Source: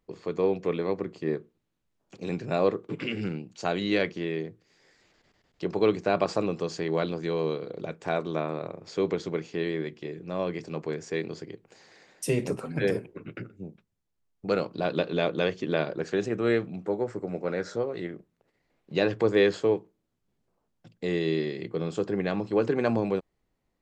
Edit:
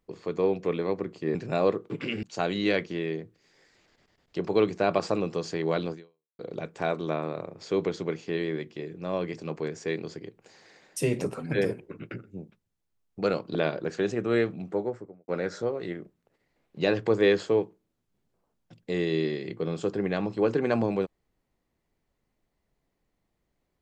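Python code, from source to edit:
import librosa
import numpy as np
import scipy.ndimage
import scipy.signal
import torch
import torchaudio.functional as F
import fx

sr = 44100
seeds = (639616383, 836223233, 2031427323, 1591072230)

y = fx.studio_fade_out(x, sr, start_s=16.86, length_s=0.56)
y = fx.edit(y, sr, fx.cut(start_s=1.35, length_s=0.99),
    fx.cut(start_s=3.22, length_s=0.27),
    fx.fade_out_span(start_s=7.19, length_s=0.46, curve='exp'),
    fx.cut(start_s=14.81, length_s=0.88), tone=tone)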